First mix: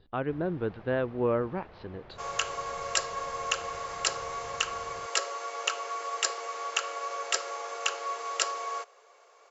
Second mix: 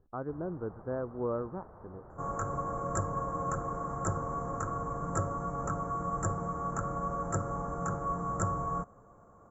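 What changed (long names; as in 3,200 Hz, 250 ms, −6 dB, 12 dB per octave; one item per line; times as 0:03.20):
speech −5.5 dB
second sound: remove elliptic high-pass filter 410 Hz, stop band 50 dB
master: add elliptic band-stop filter 1,300–8,600 Hz, stop band 70 dB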